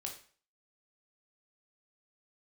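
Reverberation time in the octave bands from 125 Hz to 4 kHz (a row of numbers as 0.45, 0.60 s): 0.45, 0.40, 0.45, 0.45, 0.45, 0.40 s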